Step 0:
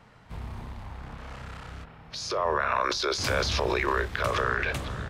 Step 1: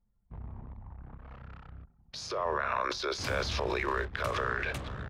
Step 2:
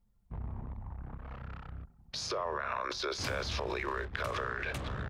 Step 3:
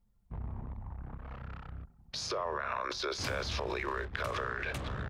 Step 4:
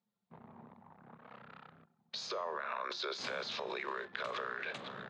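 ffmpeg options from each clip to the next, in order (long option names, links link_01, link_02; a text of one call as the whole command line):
ffmpeg -i in.wav -filter_complex "[0:a]anlmdn=0.631,acrossover=split=110|3800[link_01][link_02][link_03];[link_03]alimiter=level_in=3.5dB:limit=-24dB:level=0:latency=1:release=91,volume=-3.5dB[link_04];[link_01][link_02][link_04]amix=inputs=3:normalize=0,volume=-5dB" out.wav
ffmpeg -i in.wav -af "acompressor=threshold=-36dB:ratio=4,volume=3.5dB" out.wav
ffmpeg -i in.wav -af anull out.wav
ffmpeg -i in.wav -af "highpass=frequency=190:width=0.5412,highpass=frequency=190:width=1.3066,equalizer=frequency=300:width_type=q:width=4:gain=-8,equalizer=frequency=3800:width_type=q:width=4:gain=5,equalizer=frequency=5600:width_type=q:width=4:gain=-6,lowpass=frequency=6700:width=0.5412,lowpass=frequency=6700:width=1.3066,bandreject=frequency=348.3:width_type=h:width=4,bandreject=frequency=696.6:width_type=h:width=4,bandreject=frequency=1044.9:width_type=h:width=4,bandreject=frequency=1393.2:width_type=h:width=4,bandreject=frequency=1741.5:width_type=h:width=4,bandreject=frequency=2089.8:width_type=h:width=4,bandreject=frequency=2438.1:width_type=h:width=4,bandreject=frequency=2786.4:width_type=h:width=4,bandreject=frequency=3134.7:width_type=h:width=4,bandreject=frequency=3483:width_type=h:width=4,bandreject=frequency=3831.3:width_type=h:width=4,bandreject=frequency=4179.6:width_type=h:width=4,bandreject=frequency=4527.9:width_type=h:width=4,bandreject=frequency=4876.2:width_type=h:width=4,bandreject=frequency=5224.5:width_type=h:width=4,bandreject=frequency=5572.8:width_type=h:width=4,bandreject=frequency=5921.1:width_type=h:width=4,bandreject=frequency=6269.4:width_type=h:width=4,bandreject=frequency=6617.7:width_type=h:width=4,bandreject=frequency=6966:width_type=h:width=4,bandreject=frequency=7314.3:width_type=h:width=4,bandreject=frequency=7662.6:width_type=h:width=4,bandreject=frequency=8010.9:width_type=h:width=4,bandreject=frequency=8359.2:width_type=h:width=4,bandreject=frequency=8707.5:width_type=h:width=4,bandreject=frequency=9055.8:width_type=h:width=4,bandreject=frequency=9404.1:width_type=h:width=4,bandreject=frequency=9752.4:width_type=h:width=4,bandreject=frequency=10100.7:width_type=h:width=4,bandreject=frequency=10449:width_type=h:width=4,bandreject=frequency=10797.3:width_type=h:width=4,bandreject=frequency=11145.6:width_type=h:width=4,volume=-3.5dB" out.wav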